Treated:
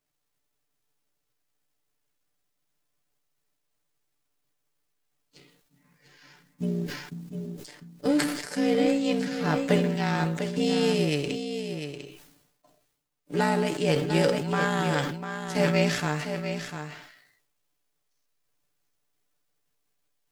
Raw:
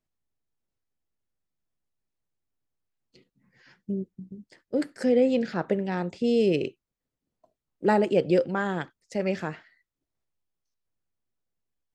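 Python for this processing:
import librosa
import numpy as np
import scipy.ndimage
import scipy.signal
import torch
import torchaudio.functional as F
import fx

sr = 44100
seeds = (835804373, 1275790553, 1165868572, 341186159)

p1 = fx.envelope_flatten(x, sr, power=0.6)
p2 = fx.rider(p1, sr, range_db=4, speed_s=0.5)
p3 = fx.stretch_grains(p2, sr, factor=1.7, grain_ms=33.0)
p4 = p3 + fx.echo_single(p3, sr, ms=698, db=-8.5, dry=0)
p5 = fx.sustainer(p4, sr, db_per_s=62.0)
y = F.gain(torch.from_numpy(p5), 1.5).numpy()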